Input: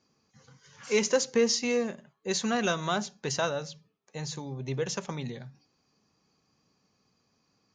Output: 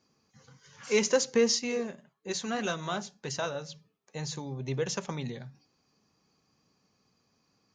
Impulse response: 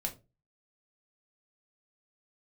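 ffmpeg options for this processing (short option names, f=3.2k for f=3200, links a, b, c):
-filter_complex "[0:a]asplit=3[a][b][c];[a]afade=t=out:st=1.58:d=0.02[d];[b]flanger=delay=0.4:depth=7:regen=-63:speed=1.8:shape=sinusoidal,afade=t=in:st=1.58:d=0.02,afade=t=out:st=3.68:d=0.02[e];[c]afade=t=in:st=3.68:d=0.02[f];[d][e][f]amix=inputs=3:normalize=0"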